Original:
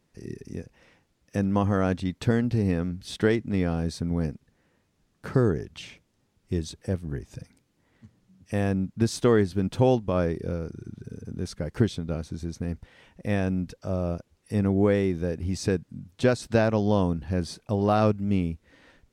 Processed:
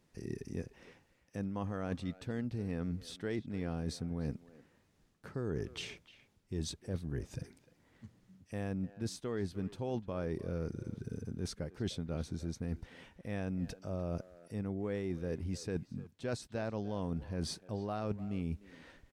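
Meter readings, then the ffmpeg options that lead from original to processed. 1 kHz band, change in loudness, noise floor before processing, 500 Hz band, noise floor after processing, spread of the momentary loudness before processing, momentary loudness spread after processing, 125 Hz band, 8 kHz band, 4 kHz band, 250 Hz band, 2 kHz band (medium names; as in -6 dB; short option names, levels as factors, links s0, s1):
-15.0 dB, -13.0 dB, -71 dBFS, -14.0 dB, -71 dBFS, 16 LU, 8 LU, -12.0 dB, -7.5 dB, -7.5 dB, -12.5 dB, -13.5 dB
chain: -filter_complex "[0:a]areverse,acompressor=threshold=0.0251:ratio=12,areverse,asplit=2[s0][s1];[s1]adelay=300,highpass=300,lowpass=3400,asoftclip=type=hard:threshold=0.02,volume=0.178[s2];[s0][s2]amix=inputs=2:normalize=0,volume=0.841"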